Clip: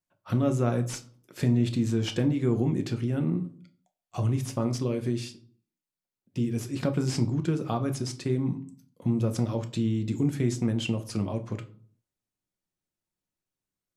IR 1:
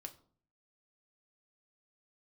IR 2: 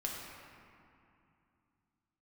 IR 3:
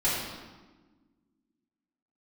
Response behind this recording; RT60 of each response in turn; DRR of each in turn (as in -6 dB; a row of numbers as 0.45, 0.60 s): 1; 0.50, 2.6, 1.3 s; 5.5, -2.5, -11.5 dB